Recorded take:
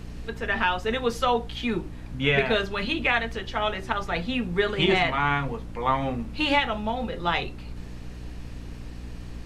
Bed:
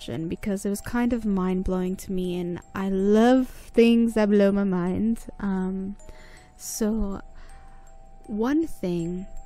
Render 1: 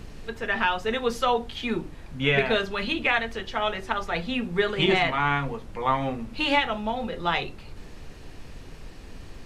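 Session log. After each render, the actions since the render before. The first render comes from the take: notches 60/120/180/240/300 Hz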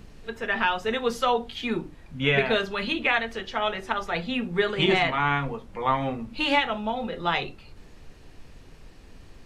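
noise print and reduce 6 dB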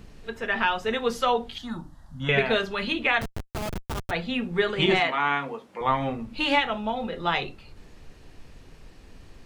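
1.58–2.29 fixed phaser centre 1000 Hz, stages 4; 3.21–4.11 Schmitt trigger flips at -24.5 dBFS; 5–5.81 HPF 270 Hz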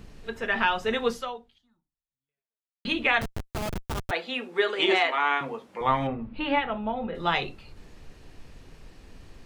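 1.08–2.85 fade out exponential; 4.11–5.41 HPF 320 Hz 24 dB/oct; 6.07–7.15 air absorption 440 m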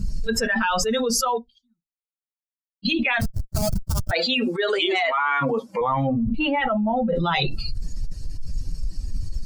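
per-bin expansion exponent 2; fast leveller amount 100%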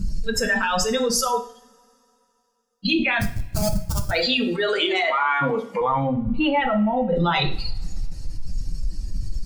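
two-slope reverb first 0.48 s, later 2.9 s, from -27 dB, DRR 6 dB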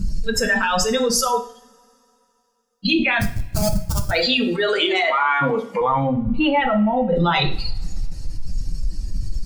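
gain +2.5 dB

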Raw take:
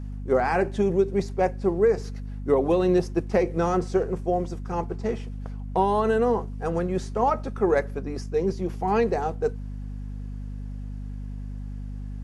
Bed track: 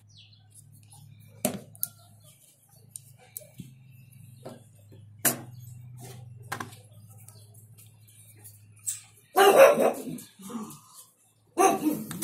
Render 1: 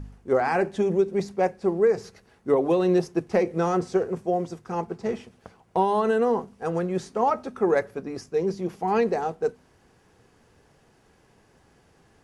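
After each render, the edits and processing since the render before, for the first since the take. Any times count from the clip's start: de-hum 50 Hz, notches 5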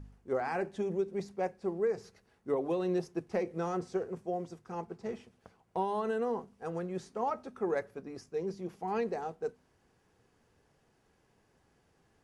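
gain -10.5 dB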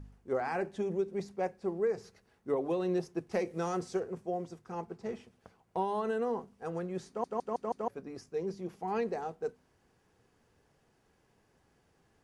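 3.31–4 high shelf 3200 Hz +8.5 dB; 7.08 stutter in place 0.16 s, 5 plays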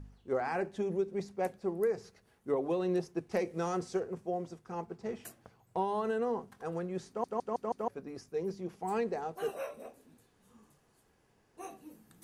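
add bed track -25 dB

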